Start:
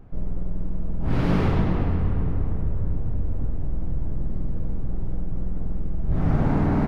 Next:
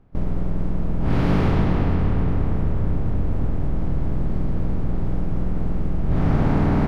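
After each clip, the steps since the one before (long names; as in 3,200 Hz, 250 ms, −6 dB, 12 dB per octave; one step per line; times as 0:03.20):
compressor on every frequency bin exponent 0.6
noise gate with hold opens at −16 dBFS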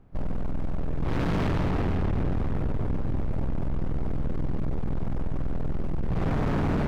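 gain into a clipping stage and back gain 23 dB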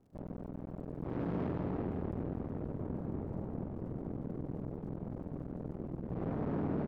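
resonant band-pass 340 Hz, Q 0.67
surface crackle 94 per second −59 dBFS
slap from a distant wall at 300 metres, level −8 dB
level −6 dB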